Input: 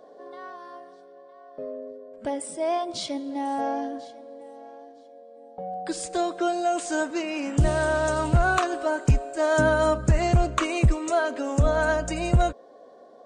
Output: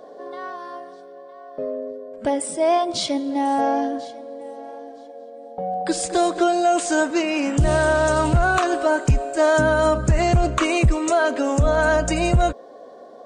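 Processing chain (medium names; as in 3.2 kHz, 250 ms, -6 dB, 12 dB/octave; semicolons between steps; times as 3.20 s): peak limiter -17.5 dBFS, peak gain reduction 6 dB; 4.22–6.44 s: modulated delay 229 ms, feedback 52%, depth 55 cents, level -11.5 dB; trim +7.5 dB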